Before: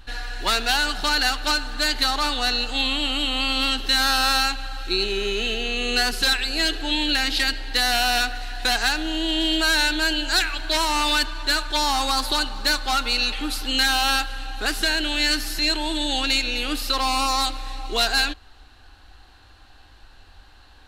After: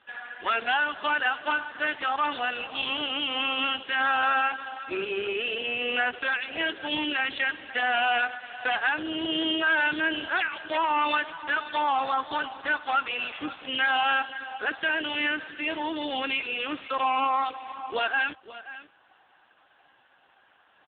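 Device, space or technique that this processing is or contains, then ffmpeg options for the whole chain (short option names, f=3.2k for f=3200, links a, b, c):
satellite phone: -af "highpass=350,lowpass=3.3k,aecho=1:1:535:0.168" -ar 8000 -c:a libopencore_amrnb -b:a 5150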